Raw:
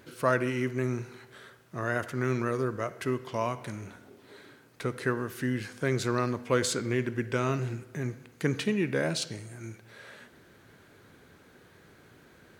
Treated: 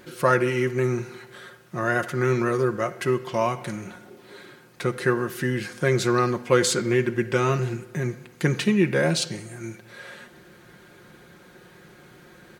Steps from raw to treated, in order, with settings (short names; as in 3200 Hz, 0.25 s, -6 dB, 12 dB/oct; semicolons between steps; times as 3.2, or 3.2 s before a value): comb 5.6 ms, depth 59%; gain +5.5 dB